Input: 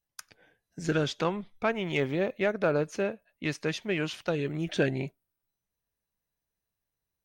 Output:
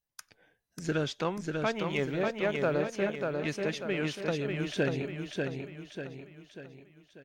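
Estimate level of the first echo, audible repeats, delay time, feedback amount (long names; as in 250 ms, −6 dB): −4.0 dB, 5, 592 ms, 46%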